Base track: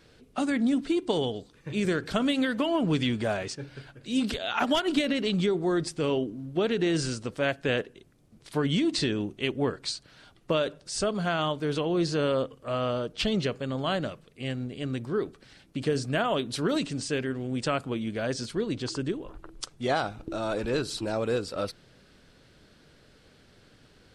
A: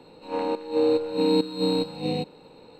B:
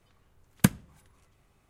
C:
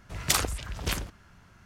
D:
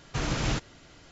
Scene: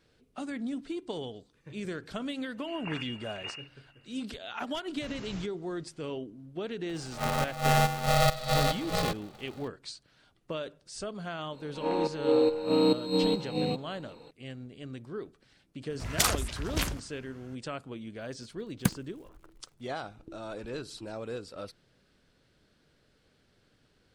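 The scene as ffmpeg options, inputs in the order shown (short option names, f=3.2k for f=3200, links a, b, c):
-filter_complex "[3:a]asplit=2[a][b];[1:a]asplit=2[c][d];[0:a]volume=-10dB[e];[a]lowpass=f=2.5k:t=q:w=0.5098,lowpass=f=2.5k:t=q:w=0.6013,lowpass=f=2.5k:t=q:w=0.9,lowpass=f=2.5k:t=q:w=2.563,afreqshift=-2900[f];[c]aeval=exprs='val(0)*sgn(sin(2*PI*320*n/s))':c=same[g];[d]aresample=32000,aresample=44100[h];[b]acontrast=87[i];[2:a]acrusher=bits=7:dc=4:mix=0:aa=0.000001[j];[f]atrim=end=1.65,asetpts=PTS-STARTPTS,volume=-10.5dB,afade=t=in:d=0.004:c=hsin,afade=t=out:st=1.646:d=0.004:c=hsin,adelay=2570[k];[4:a]atrim=end=1.11,asetpts=PTS-STARTPTS,volume=-16dB,afade=t=in:d=0.004:c=hsin,afade=t=out:st=1.106:d=0.004:c=hsin,adelay=4870[l];[g]atrim=end=2.79,asetpts=PTS-STARTPTS,volume=-2.5dB,afade=t=in:d=0.004:c=hsin,afade=t=out:st=2.786:d=0.004:c=hsin,adelay=6890[m];[h]atrim=end=2.79,asetpts=PTS-STARTPTS,volume=-2.5dB,afade=t=in:d=0.004:c=hsin,afade=t=out:st=2.786:d=0.004:c=hsin,adelay=11520[n];[i]atrim=end=1.65,asetpts=PTS-STARTPTS,volume=-7.5dB,afade=t=in:d=0.004:c=hsin,afade=t=out:st=1.646:d=0.004:c=hsin,adelay=15900[o];[j]atrim=end=1.69,asetpts=PTS-STARTPTS,volume=-6dB,afade=t=in:d=0.004:c=hsin,afade=t=out:st=1.686:d=0.004:c=hsin,adelay=18210[p];[e][k][l][m][n][o][p]amix=inputs=7:normalize=0"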